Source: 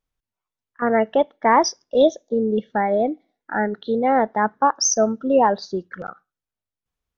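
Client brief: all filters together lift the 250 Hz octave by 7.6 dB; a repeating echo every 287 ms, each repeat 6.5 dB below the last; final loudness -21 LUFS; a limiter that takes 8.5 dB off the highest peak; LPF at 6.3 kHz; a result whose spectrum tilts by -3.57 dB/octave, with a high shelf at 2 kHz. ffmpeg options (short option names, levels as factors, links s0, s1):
-af "lowpass=6300,equalizer=f=250:t=o:g=8.5,highshelf=f=2000:g=9,alimiter=limit=0.355:level=0:latency=1,aecho=1:1:287|574|861|1148|1435|1722:0.473|0.222|0.105|0.0491|0.0231|0.0109,volume=0.794"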